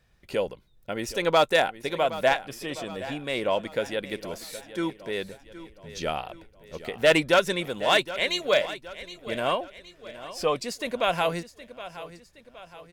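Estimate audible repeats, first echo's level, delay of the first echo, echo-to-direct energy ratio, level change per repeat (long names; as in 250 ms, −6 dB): 4, −15.0 dB, 768 ms, −14.0 dB, −6.5 dB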